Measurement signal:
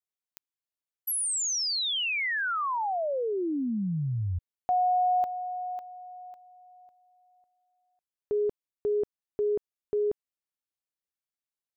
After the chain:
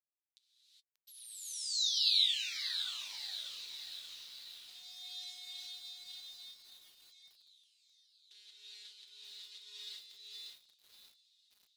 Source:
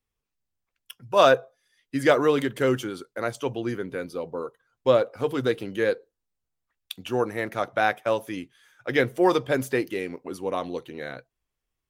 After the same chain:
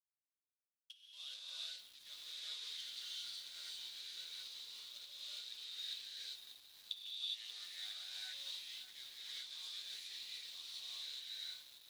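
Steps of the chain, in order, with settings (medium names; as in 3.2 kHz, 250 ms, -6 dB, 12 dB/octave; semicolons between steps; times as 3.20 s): octave divider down 1 oct, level -1 dB; reverse; compression 10:1, threshold -30 dBFS; reverse; flange 0.18 Hz, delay 7.7 ms, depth 3.5 ms, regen +35%; companded quantiser 4-bit; ladder band-pass 4.1 kHz, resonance 75%; on a send: feedback echo behind a high-pass 760 ms, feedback 73%, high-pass 3.4 kHz, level -20 dB; on the sum: gated-style reverb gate 440 ms rising, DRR -7.5 dB; bit-crushed delay 586 ms, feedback 55%, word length 9-bit, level -9 dB; trim +1 dB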